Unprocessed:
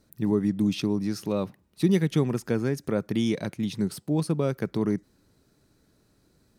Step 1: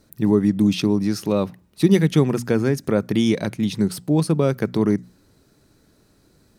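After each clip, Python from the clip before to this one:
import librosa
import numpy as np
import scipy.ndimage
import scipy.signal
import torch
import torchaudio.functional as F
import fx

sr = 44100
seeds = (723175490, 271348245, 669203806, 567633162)

y = fx.hum_notches(x, sr, base_hz=60, count=4)
y = F.gain(torch.from_numpy(y), 7.0).numpy()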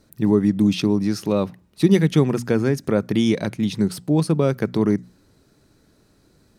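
y = fx.high_shelf(x, sr, hz=11000.0, db=-5.5)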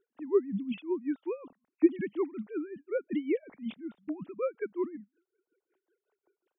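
y = fx.sine_speech(x, sr)
y = y * 10.0 ** (-19 * (0.5 - 0.5 * np.cos(2.0 * np.pi * 5.4 * np.arange(len(y)) / sr)) / 20.0)
y = F.gain(torch.from_numpy(y), -8.5).numpy()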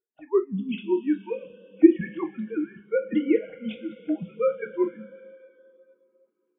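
y = fx.rev_double_slope(x, sr, seeds[0], early_s=0.25, late_s=4.8, knee_db=-19, drr_db=2.5)
y = fx.noise_reduce_blind(y, sr, reduce_db=21)
y = F.gain(torch.from_numpy(y), 6.0).numpy()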